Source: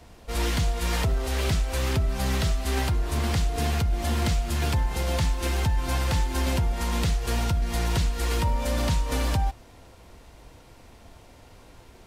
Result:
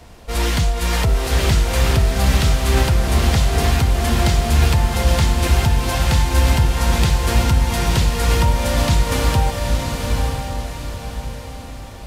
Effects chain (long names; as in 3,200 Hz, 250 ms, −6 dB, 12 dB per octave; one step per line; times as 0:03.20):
parametric band 300 Hz −2 dB
feedback delay with all-pass diffusion 914 ms, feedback 43%, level −3 dB
level +7 dB